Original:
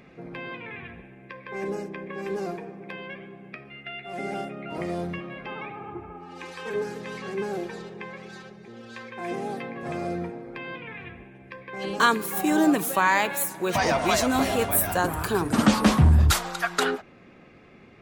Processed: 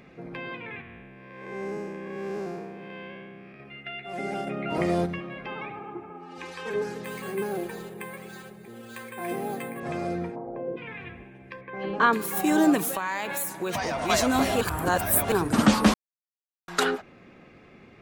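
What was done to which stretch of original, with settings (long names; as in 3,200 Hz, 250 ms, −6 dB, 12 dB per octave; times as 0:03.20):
0:00.81–0:03.60: spectrum smeared in time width 260 ms
0:04.47–0:05.06: clip gain +5.5 dB
0:05.79–0:06.38: Chebyshev high-pass filter 200 Hz
0:07.04–0:09.80: bad sample-rate conversion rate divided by 4×, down filtered, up hold
0:10.35–0:10.76: low-pass with resonance 1,000 Hz → 430 Hz, resonance Q 4.2
0:11.61–0:12.13: low-pass filter 2,100 Hz
0:12.88–0:14.10: downward compressor, threshold −25 dBFS
0:14.61–0:15.32: reverse
0:15.94–0:16.68: silence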